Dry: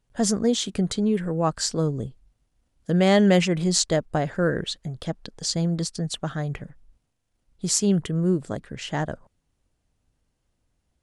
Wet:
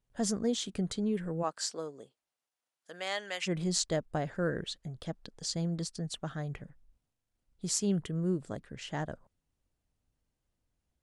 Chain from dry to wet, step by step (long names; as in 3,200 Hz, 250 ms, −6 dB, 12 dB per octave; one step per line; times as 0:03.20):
0:01.42–0:03.46: high-pass filter 370 Hz → 1,200 Hz 12 dB per octave
level −9 dB